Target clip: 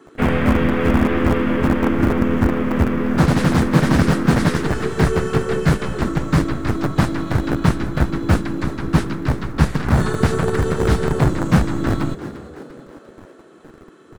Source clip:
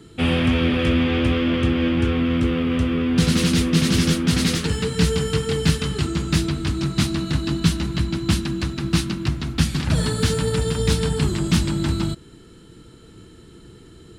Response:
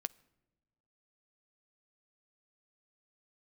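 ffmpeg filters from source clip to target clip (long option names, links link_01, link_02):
-filter_complex "[0:a]acrossover=split=260|2300[link_01][link_02][link_03];[link_01]acrusher=bits=4:dc=4:mix=0:aa=0.000001[link_04];[link_04][link_02][link_03]amix=inputs=3:normalize=0,asplit=6[link_05][link_06][link_07][link_08][link_09][link_10];[link_06]adelay=347,afreqshift=77,volume=-14.5dB[link_11];[link_07]adelay=694,afreqshift=154,volume=-20.3dB[link_12];[link_08]adelay=1041,afreqshift=231,volume=-26.2dB[link_13];[link_09]adelay=1388,afreqshift=308,volume=-32dB[link_14];[link_10]adelay=1735,afreqshift=385,volume=-37.9dB[link_15];[link_05][link_11][link_12][link_13][link_14][link_15]amix=inputs=6:normalize=0,asplit=2[link_16][link_17];[link_17]asetrate=37084,aresample=44100,atempo=1.18921,volume=-2dB[link_18];[link_16][link_18]amix=inputs=2:normalize=0,highshelf=frequency=2200:width_type=q:width=1.5:gain=-9,volume=1dB"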